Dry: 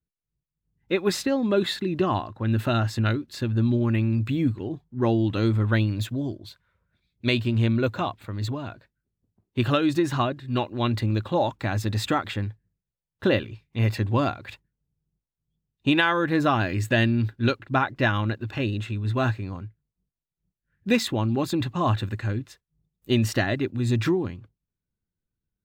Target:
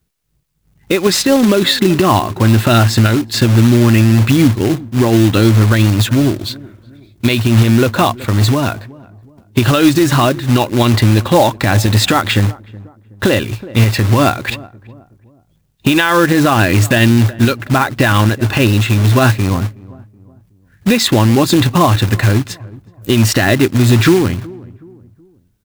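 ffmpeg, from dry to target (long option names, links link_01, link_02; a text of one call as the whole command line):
ffmpeg -i in.wav -filter_complex "[0:a]highshelf=frequency=2300:gain=2,acompressor=threshold=-29dB:ratio=2,acrusher=bits=3:mode=log:mix=0:aa=0.000001,asplit=2[link_01][link_02];[link_02]adelay=372,lowpass=frequency=840:poles=1,volume=-21dB,asplit=2[link_03][link_04];[link_04]adelay=372,lowpass=frequency=840:poles=1,volume=0.42,asplit=2[link_05][link_06];[link_06]adelay=372,lowpass=frequency=840:poles=1,volume=0.42[link_07];[link_01][link_03][link_05][link_07]amix=inputs=4:normalize=0,alimiter=level_in=20.5dB:limit=-1dB:release=50:level=0:latency=1,volume=-1dB" out.wav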